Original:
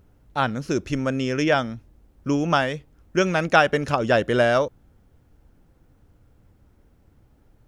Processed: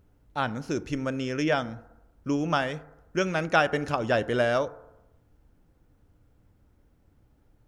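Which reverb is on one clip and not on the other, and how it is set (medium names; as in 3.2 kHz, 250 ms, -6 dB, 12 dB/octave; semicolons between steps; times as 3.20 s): FDN reverb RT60 0.95 s, low-frequency decay 0.8×, high-frequency decay 0.3×, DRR 14.5 dB; trim -5.5 dB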